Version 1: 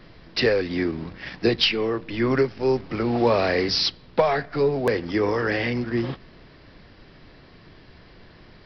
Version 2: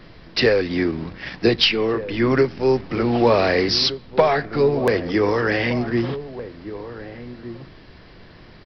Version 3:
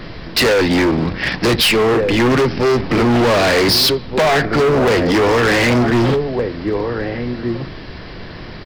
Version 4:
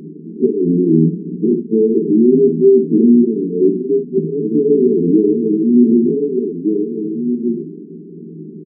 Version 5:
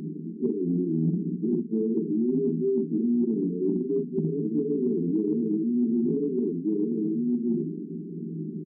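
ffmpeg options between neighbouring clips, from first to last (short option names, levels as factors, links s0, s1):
-filter_complex "[0:a]asplit=2[s0][s1];[s1]adelay=1516,volume=0.224,highshelf=f=4000:g=-34.1[s2];[s0][s2]amix=inputs=2:normalize=0,volume=1.5"
-filter_complex "[0:a]asplit=2[s0][s1];[s1]alimiter=limit=0.188:level=0:latency=1:release=22,volume=0.841[s2];[s0][s2]amix=inputs=2:normalize=0,asoftclip=type=hard:threshold=0.106,volume=2.51"
-filter_complex "[0:a]afftfilt=real='re*between(b*sr/4096,160,450)':imag='im*between(b*sr/4096,160,450)':win_size=4096:overlap=0.75,asplit=2[s0][s1];[s1]aecho=0:1:13|62:0.596|0.422[s2];[s0][s2]amix=inputs=2:normalize=0,volume=1.41"
-af "equalizer=f=490:w=1.8:g=-10.5,areverse,acompressor=threshold=0.0708:ratio=6,areverse"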